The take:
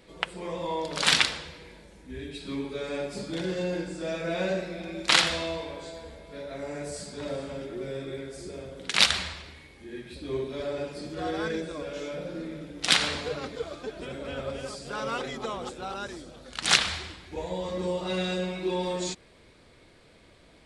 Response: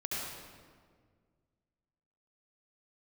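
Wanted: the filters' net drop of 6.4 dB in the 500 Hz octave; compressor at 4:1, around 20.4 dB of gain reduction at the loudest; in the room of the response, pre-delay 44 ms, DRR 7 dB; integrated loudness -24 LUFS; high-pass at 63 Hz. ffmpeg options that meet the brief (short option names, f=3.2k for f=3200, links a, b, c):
-filter_complex "[0:a]highpass=63,equalizer=f=500:t=o:g=-8,acompressor=threshold=-42dB:ratio=4,asplit=2[a][b];[1:a]atrim=start_sample=2205,adelay=44[c];[b][c]afir=irnorm=-1:irlink=0,volume=-11dB[d];[a][d]amix=inputs=2:normalize=0,volume=19dB"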